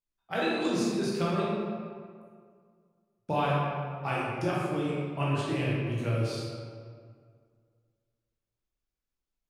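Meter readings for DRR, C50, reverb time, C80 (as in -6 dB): -7.0 dB, -2.5 dB, 2.0 s, 0.0 dB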